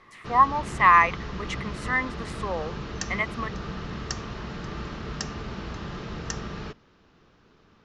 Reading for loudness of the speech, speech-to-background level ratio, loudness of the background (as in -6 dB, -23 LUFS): -23.5 LUFS, 12.0 dB, -35.5 LUFS